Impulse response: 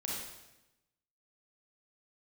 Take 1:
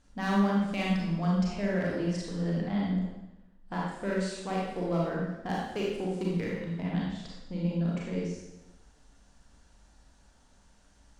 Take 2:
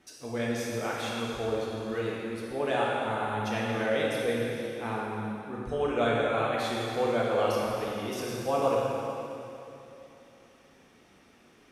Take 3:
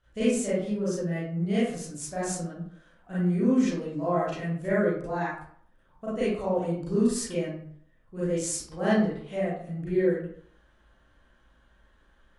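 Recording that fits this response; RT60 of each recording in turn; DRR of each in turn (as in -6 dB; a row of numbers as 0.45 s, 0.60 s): 1; 0.95 s, 2.9 s, 0.60 s; -4.5 dB, -5.5 dB, -11.0 dB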